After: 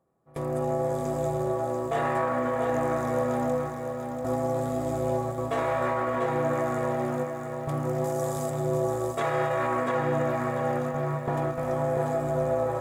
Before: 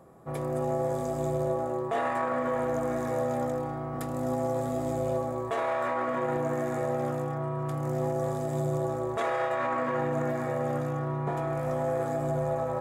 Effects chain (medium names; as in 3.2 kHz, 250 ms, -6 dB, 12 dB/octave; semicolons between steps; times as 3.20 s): gate with hold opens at -22 dBFS; 8.04–8.50 s: tone controls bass -4 dB, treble +10 dB; bit-crushed delay 690 ms, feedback 35%, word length 10-bit, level -6 dB; trim +1.5 dB